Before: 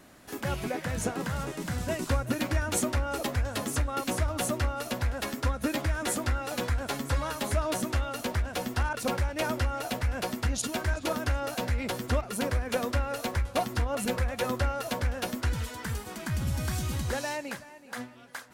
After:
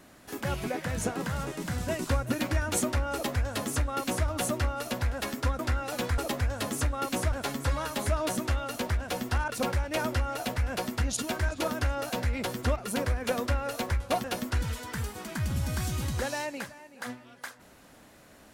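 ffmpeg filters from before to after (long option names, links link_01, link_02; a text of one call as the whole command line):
ffmpeg -i in.wav -filter_complex "[0:a]asplit=5[link_01][link_02][link_03][link_04][link_05];[link_01]atrim=end=5.592[link_06];[link_02]atrim=start=6.178:end=6.772[link_07];[link_03]atrim=start=3.128:end=4.272[link_08];[link_04]atrim=start=6.768:end=13.692[link_09];[link_05]atrim=start=15.148[link_10];[link_06][link_07]acrossfade=duration=0.004:curve1=hsin:curve2=hsin[link_11];[link_11][link_08]acrossfade=duration=0.004:curve1=hsin:curve2=hsin[link_12];[link_12][link_09]acrossfade=duration=0.004:curve1=hsin:curve2=hsin[link_13];[link_13][link_10]acrossfade=duration=0.004:curve1=hsin:curve2=hsin" out.wav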